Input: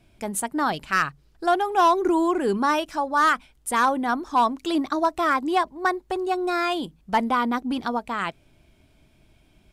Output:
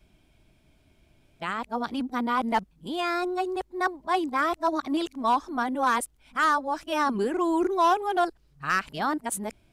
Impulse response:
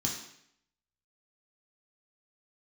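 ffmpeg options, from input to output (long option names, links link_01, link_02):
-af "areverse,volume=-3.5dB"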